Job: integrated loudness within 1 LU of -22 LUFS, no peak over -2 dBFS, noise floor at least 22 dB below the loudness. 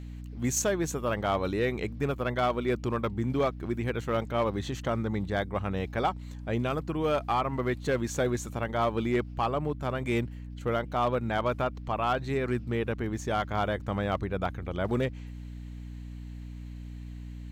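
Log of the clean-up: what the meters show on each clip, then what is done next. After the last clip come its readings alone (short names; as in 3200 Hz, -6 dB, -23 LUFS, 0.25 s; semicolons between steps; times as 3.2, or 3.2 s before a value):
clipped 0.6%; flat tops at -19.5 dBFS; hum 60 Hz; harmonics up to 300 Hz; hum level -38 dBFS; loudness -30.0 LUFS; peak -19.5 dBFS; loudness target -22.0 LUFS
-> clip repair -19.5 dBFS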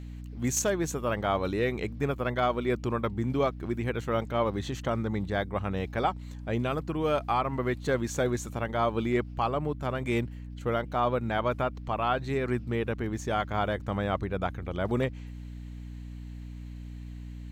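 clipped 0.0%; hum 60 Hz; harmonics up to 300 Hz; hum level -38 dBFS
-> de-hum 60 Hz, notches 5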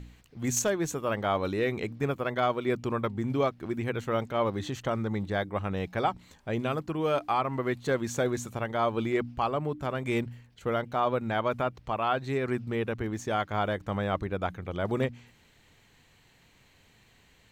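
hum none; loudness -30.5 LUFS; peak -12.5 dBFS; loudness target -22.0 LUFS
-> gain +8.5 dB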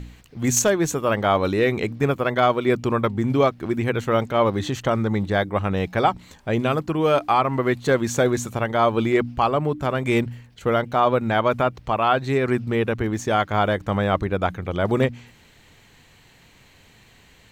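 loudness -22.0 LUFS; peak -4.0 dBFS; noise floor -53 dBFS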